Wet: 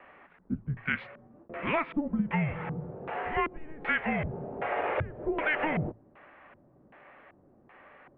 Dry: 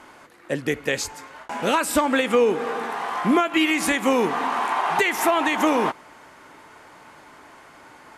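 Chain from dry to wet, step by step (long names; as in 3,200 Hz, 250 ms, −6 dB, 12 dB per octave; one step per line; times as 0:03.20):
auto-filter low-pass square 1.3 Hz 510–2,500 Hz
mains-hum notches 60/120/180/240/300/360/420 Hz
single-sideband voice off tune −310 Hz 460–3,500 Hz
level −9 dB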